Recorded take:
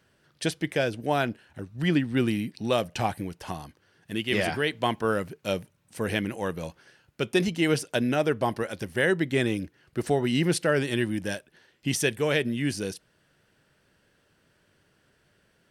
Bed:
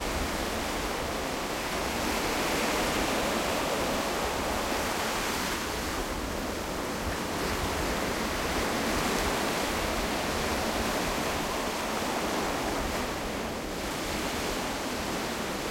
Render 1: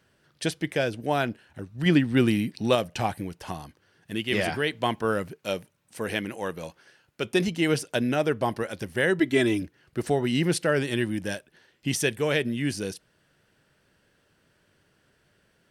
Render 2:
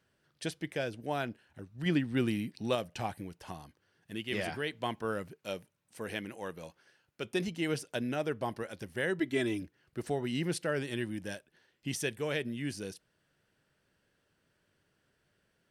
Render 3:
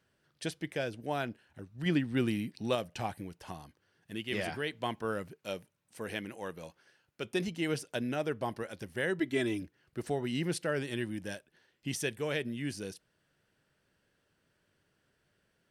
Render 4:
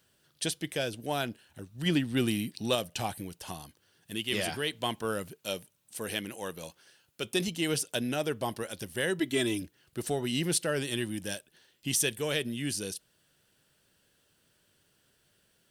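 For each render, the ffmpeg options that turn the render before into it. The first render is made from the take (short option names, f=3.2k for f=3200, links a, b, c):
-filter_complex "[0:a]asettb=1/sr,asplit=3[a][b][c];[a]atrim=end=5.344[d];[b]atrim=start=5.34:end=7.25,asetpts=PTS-STARTPTS,afade=t=in:d=0.004:c=qsin,afade=t=out:st=1.906:d=0.004:c=qsin,lowshelf=f=180:g=-8.5[e];[c]atrim=start=7.246[f];[d][e]acrossfade=d=0.004:c1=hsin:c2=qsin[g];[g][f]acrossfade=d=0.004:c1=qsin:c2=hsin,asettb=1/sr,asplit=3[h][i][j];[h]atrim=end=9.194[k];[i]atrim=start=9.19:end=9.62,asetpts=PTS-STARTPTS,afade=t=in:d=0.004:c=qsin,afade=t=out:st=0.426:d=0.004:c=qsin,aecho=1:1:3:0.89,atrim=end_sample=18963[l];[j]atrim=start=9.616[m];[k][l]acrossfade=d=0.004:c1=hsin:c2=qsin[n];[n][m]acrossfade=d=0.004:c1=qsin:c2=hsin,asplit=3[o][p][q];[o]atrim=end=1.862[r];[p]atrim=start=1.858:end=2.752,asetpts=PTS-STARTPTS,volume=3.5dB[s];[q]atrim=start=2.748[t];[r][s]acrossfade=d=0.004:c1=hsin:c2=hsin[u];[u][t]acrossfade=d=0.004:c1=hsin:c2=hsin"
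-af "volume=-9dB"
-af anull
-filter_complex "[0:a]aexciter=amount=2.9:drive=3.5:freq=2.9k,asplit=2[a][b];[b]asoftclip=type=tanh:threshold=-27dB,volume=-9.5dB[c];[a][c]amix=inputs=2:normalize=0"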